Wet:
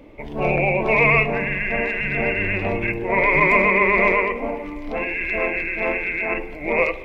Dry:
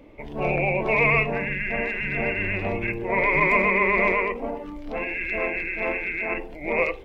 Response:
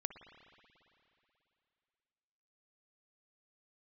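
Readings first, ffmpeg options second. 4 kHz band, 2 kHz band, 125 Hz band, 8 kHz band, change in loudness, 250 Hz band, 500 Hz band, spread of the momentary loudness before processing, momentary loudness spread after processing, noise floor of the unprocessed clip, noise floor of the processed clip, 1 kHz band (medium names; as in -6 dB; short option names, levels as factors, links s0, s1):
+4.0 dB, +4.0 dB, +3.5 dB, no reading, +4.0 dB, +4.0 dB, +4.0 dB, 11 LU, 11 LU, -38 dBFS, -34 dBFS, +4.0 dB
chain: -filter_complex "[0:a]asplit=2[s0][s1];[1:a]atrim=start_sample=2205[s2];[s1][s2]afir=irnorm=-1:irlink=0,volume=0.708[s3];[s0][s3]amix=inputs=2:normalize=0"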